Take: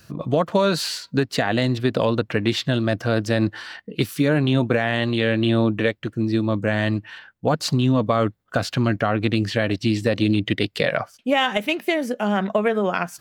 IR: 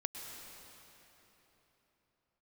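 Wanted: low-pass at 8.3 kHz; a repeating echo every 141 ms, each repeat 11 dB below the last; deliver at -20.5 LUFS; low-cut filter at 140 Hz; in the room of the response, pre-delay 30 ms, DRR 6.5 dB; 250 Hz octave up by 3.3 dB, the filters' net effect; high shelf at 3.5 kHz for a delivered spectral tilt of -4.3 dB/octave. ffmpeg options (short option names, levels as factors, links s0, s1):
-filter_complex "[0:a]highpass=140,lowpass=8300,equalizer=f=250:t=o:g=4.5,highshelf=f=3500:g=5.5,aecho=1:1:141|282|423:0.282|0.0789|0.0221,asplit=2[s0][s1];[1:a]atrim=start_sample=2205,adelay=30[s2];[s1][s2]afir=irnorm=-1:irlink=0,volume=0.473[s3];[s0][s3]amix=inputs=2:normalize=0,volume=0.841"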